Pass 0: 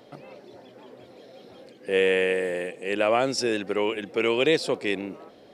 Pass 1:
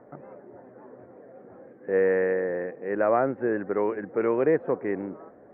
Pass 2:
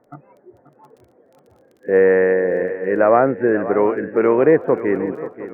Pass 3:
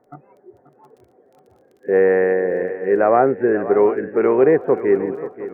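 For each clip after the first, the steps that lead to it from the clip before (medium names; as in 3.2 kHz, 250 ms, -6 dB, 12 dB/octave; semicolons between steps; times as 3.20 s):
steep low-pass 1.8 kHz 48 dB/octave
spectral noise reduction 16 dB; crackle 15 per s -49 dBFS; shuffle delay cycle 712 ms, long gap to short 3:1, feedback 34%, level -14 dB; trim +9 dB
small resonant body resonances 400/750 Hz, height 9 dB, ringing for 85 ms; trim -2.5 dB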